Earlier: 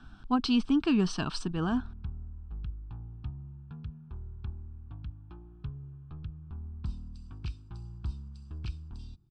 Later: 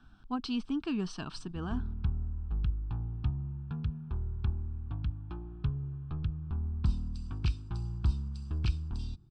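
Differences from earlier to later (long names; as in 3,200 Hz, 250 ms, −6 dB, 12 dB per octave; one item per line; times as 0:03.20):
speech −7.5 dB
background +7.0 dB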